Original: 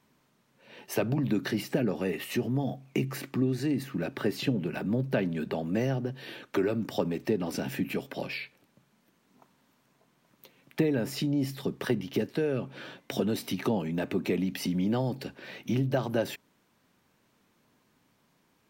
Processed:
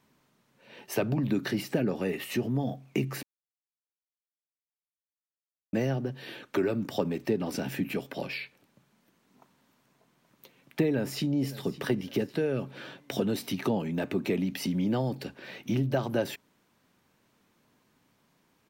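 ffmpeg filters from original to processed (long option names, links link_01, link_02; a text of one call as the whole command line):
ffmpeg -i in.wav -filter_complex "[0:a]asplit=2[link_01][link_02];[link_02]afade=type=in:start_time=10.86:duration=0.01,afade=type=out:start_time=11.59:duration=0.01,aecho=0:1:560|1120|1680:0.133352|0.0533409|0.0213363[link_03];[link_01][link_03]amix=inputs=2:normalize=0,asplit=3[link_04][link_05][link_06];[link_04]atrim=end=3.23,asetpts=PTS-STARTPTS,afade=type=out:start_time=3.226:duration=0.004:curve=hsin[link_07];[link_05]atrim=start=3.23:end=5.73,asetpts=PTS-STARTPTS,volume=0[link_08];[link_06]atrim=start=5.73,asetpts=PTS-STARTPTS,afade=type=in:duration=0.004:curve=hsin[link_09];[link_07][link_08][link_09]concat=n=3:v=0:a=1" out.wav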